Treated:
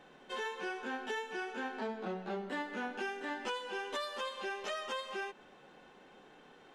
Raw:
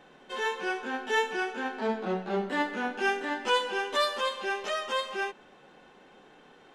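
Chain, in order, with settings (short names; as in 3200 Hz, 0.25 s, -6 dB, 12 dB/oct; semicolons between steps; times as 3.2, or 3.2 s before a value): compressor 10:1, threshold -32 dBFS, peak gain reduction 12.5 dB; gain -3 dB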